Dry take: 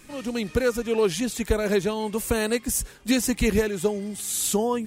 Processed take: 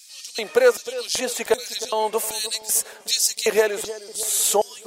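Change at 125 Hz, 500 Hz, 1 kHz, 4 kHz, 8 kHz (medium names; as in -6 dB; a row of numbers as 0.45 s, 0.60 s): under -15 dB, +2.5 dB, +5.5 dB, +8.0 dB, +6.5 dB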